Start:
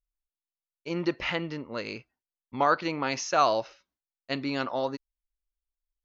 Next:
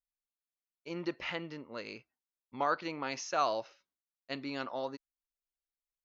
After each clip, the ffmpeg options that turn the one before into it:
ffmpeg -i in.wav -af "lowshelf=frequency=92:gain=-11.5,volume=-7.5dB" out.wav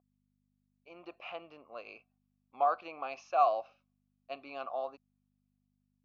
ffmpeg -i in.wav -filter_complex "[0:a]dynaudnorm=framelen=430:gausssize=5:maxgain=10dB,aeval=exprs='val(0)+0.00631*(sin(2*PI*50*n/s)+sin(2*PI*2*50*n/s)/2+sin(2*PI*3*50*n/s)/3+sin(2*PI*4*50*n/s)/4+sin(2*PI*5*50*n/s)/5)':channel_layout=same,asplit=3[link_01][link_02][link_03];[link_01]bandpass=frequency=730:width_type=q:width=8,volume=0dB[link_04];[link_02]bandpass=frequency=1090:width_type=q:width=8,volume=-6dB[link_05];[link_03]bandpass=frequency=2440:width_type=q:width=8,volume=-9dB[link_06];[link_04][link_05][link_06]amix=inputs=3:normalize=0,volume=-1dB" out.wav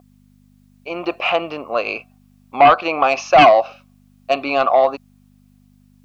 ffmpeg -i in.wav -filter_complex "[0:a]asplit=2[link_01][link_02];[link_02]acompressor=threshold=-37dB:ratio=6,volume=-1dB[link_03];[link_01][link_03]amix=inputs=2:normalize=0,aeval=exprs='0.224*sin(PI/2*2.51*val(0)/0.224)':channel_layout=same,volume=8.5dB" out.wav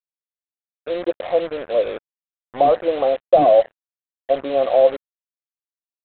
ffmpeg -i in.wav -af "lowpass=frequency=520:width_type=q:width=4.9,aresample=8000,acrusher=bits=3:mix=0:aa=0.5,aresample=44100,volume=-6.5dB" out.wav

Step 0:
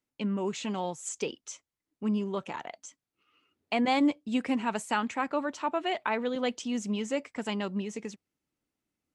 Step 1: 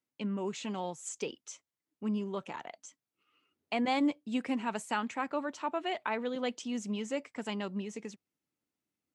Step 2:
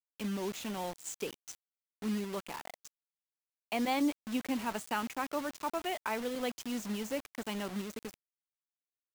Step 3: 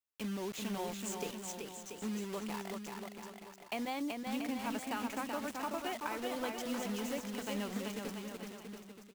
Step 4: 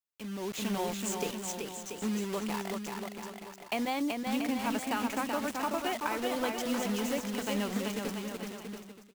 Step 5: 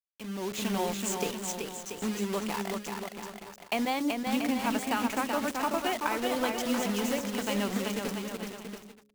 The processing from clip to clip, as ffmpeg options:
ffmpeg -i in.wav -af "highpass=90,volume=-4dB" out.wav
ffmpeg -i in.wav -af "acrusher=bits=6:mix=0:aa=0.000001,volume=-1.5dB" out.wav
ffmpeg -i in.wav -af "acompressor=threshold=-34dB:ratio=6,aecho=1:1:380|684|927.2|1122|1277:0.631|0.398|0.251|0.158|0.1,volume=-1dB" out.wav
ffmpeg -i in.wav -af "dynaudnorm=framelen=120:gausssize=7:maxgain=9.5dB,volume=-3.5dB" out.wav
ffmpeg -i in.wav -af "aeval=exprs='sgn(val(0))*max(abs(val(0))-0.00237,0)':channel_layout=same,bandreject=frequency=69.95:width_type=h:width=4,bandreject=frequency=139.9:width_type=h:width=4,bandreject=frequency=209.85:width_type=h:width=4,bandreject=frequency=279.8:width_type=h:width=4,bandreject=frequency=349.75:width_type=h:width=4,bandreject=frequency=419.7:width_type=h:width=4,bandreject=frequency=489.65:width_type=h:width=4,bandreject=frequency=559.6:width_type=h:width=4,volume=3.5dB" out.wav

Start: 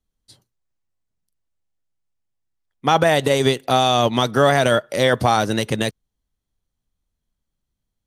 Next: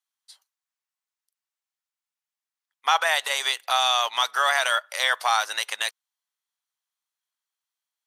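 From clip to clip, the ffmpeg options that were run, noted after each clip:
ffmpeg -i in.wav -af "highpass=frequency=920:width=0.5412,highpass=frequency=920:width=1.3066" out.wav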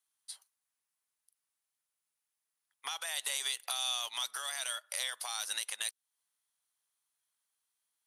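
ffmpeg -i in.wav -filter_complex "[0:a]equalizer=frequency=10000:width=2.4:gain=11.5,alimiter=limit=-18.5dB:level=0:latency=1:release=362,acrossover=split=240|3000[link_01][link_02][link_03];[link_02]acompressor=threshold=-42dB:ratio=10[link_04];[link_01][link_04][link_03]amix=inputs=3:normalize=0" out.wav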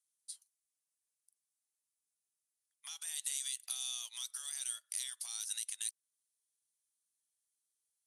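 ffmpeg -i in.wav -af "bandpass=frequency=8000:width_type=q:width=1.3:csg=0,volume=1dB" out.wav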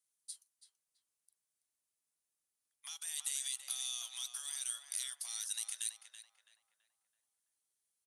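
ffmpeg -i in.wav -filter_complex "[0:a]asplit=2[link_01][link_02];[link_02]adelay=331,lowpass=frequency=1800:poles=1,volume=-4dB,asplit=2[link_03][link_04];[link_04]adelay=331,lowpass=frequency=1800:poles=1,volume=0.51,asplit=2[link_05][link_06];[link_06]adelay=331,lowpass=frequency=1800:poles=1,volume=0.51,asplit=2[link_07][link_08];[link_08]adelay=331,lowpass=frequency=1800:poles=1,volume=0.51,asplit=2[link_09][link_10];[link_10]adelay=331,lowpass=frequency=1800:poles=1,volume=0.51,asplit=2[link_11][link_12];[link_12]adelay=331,lowpass=frequency=1800:poles=1,volume=0.51,asplit=2[link_13][link_14];[link_14]adelay=331,lowpass=frequency=1800:poles=1,volume=0.51[link_15];[link_01][link_03][link_05][link_07][link_09][link_11][link_13][link_15]amix=inputs=8:normalize=0" out.wav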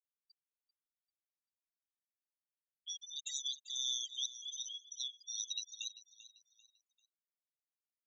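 ffmpeg -i in.wav -af "aresample=16000,aresample=44100,afftfilt=real='re*gte(hypot(re,im),0.0158)':imag='im*gte(hypot(re,im),0.0158)':win_size=1024:overlap=0.75,aecho=1:1:392|784|1176:0.168|0.0554|0.0183,volume=6.5dB" out.wav

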